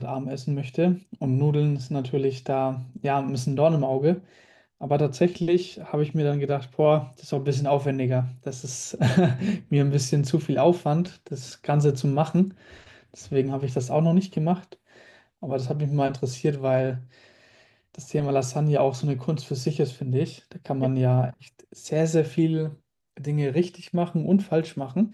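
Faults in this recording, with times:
8.51 s: dropout 2.9 ms

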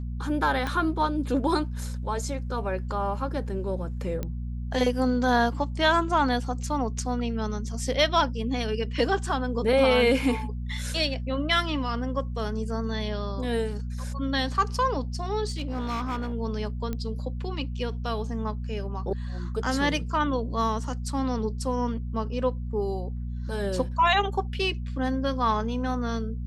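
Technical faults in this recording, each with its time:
hum 60 Hz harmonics 4 -32 dBFS
0.67 s: pop -16 dBFS
4.23 s: pop -18 dBFS
15.49–16.34 s: clipped -25.5 dBFS
16.93 s: pop -18 dBFS

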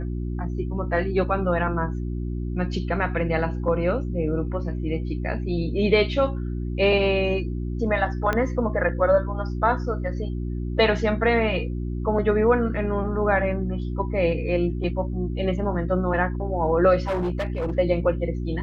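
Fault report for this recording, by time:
hum 60 Hz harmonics 6 -28 dBFS
8.33 s: pop -11 dBFS
17.02–17.77 s: clipped -21.5 dBFS

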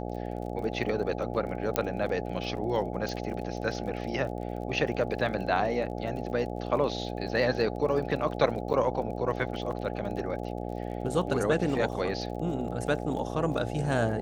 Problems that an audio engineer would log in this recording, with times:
buzz 60 Hz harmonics 14 -35 dBFS
crackle 36 per s -39 dBFS
1.76 s: pop -9 dBFS
3.09 s: pop -22 dBFS
7.29 s: dropout 2.2 ms
8.73–8.74 s: dropout 9 ms

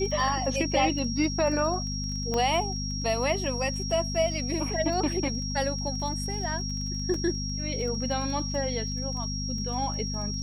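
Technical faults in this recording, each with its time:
crackle 21 per s -36 dBFS
hum 50 Hz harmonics 5 -33 dBFS
whine 5.6 kHz -34 dBFS
2.34 s: pop -16 dBFS
7.14 s: dropout 3.1 ms

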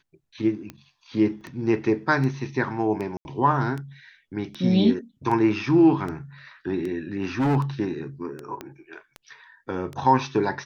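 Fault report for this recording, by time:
tick 78 rpm -21 dBFS
1.41 s: dropout 2.4 ms
3.17–3.25 s: dropout 81 ms
7.22–7.57 s: clipped -18.5 dBFS
8.61 s: pop -19 dBFS

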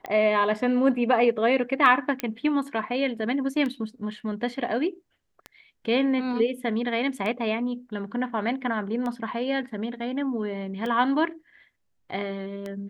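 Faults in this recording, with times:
tick 33 1/3 rpm -20 dBFS
2.20 s: pop -12 dBFS

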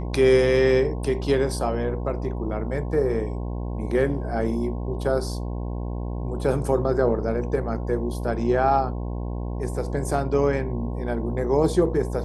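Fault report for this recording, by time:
buzz 60 Hz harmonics 18 -29 dBFS

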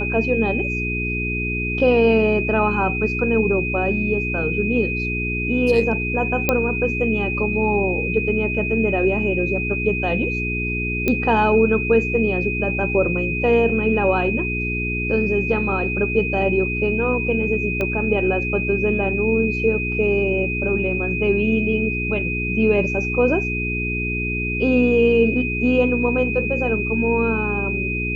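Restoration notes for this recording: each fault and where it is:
hum 60 Hz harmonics 7 -26 dBFS
whine 2.5 kHz -24 dBFS
6.49 s: pop -3 dBFS
11.08 s: pop -7 dBFS
17.81 s: pop -11 dBFS

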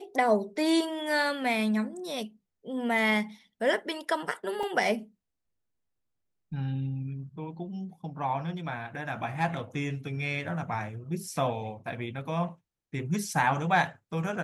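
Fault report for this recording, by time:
4.63 s: dropout 3.2 ms

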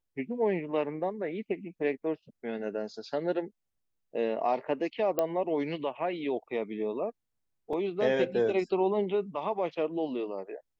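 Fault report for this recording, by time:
5.19 s: pop -14 dBFS
7.73 s: dropout 3.5 ms

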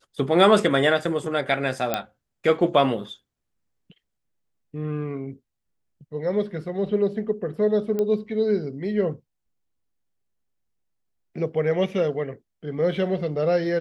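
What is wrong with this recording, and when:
1.94 s: pop -8 dBFS
7.99 s: pop -15 dBFS

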